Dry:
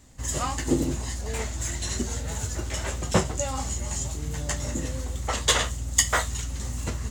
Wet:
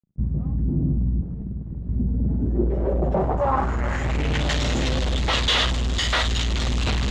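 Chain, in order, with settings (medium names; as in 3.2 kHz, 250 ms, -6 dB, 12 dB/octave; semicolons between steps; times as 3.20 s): 2.45–3.23 s: comb 5.2 ms, depth 87%; gain riding 2 s; fuzz box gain 42 dB, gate -43 dBFS; on a send: filtered feedback delay 431 ms, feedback 44%, low-pass 830 Hz, level -12 dB; 1.21–1.89 s: on the sum: integer overflow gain 16 dB; low-pass sweep 180 Hz -> 3.6 kHz, 2.06–4.52 s; trim -7.5 dB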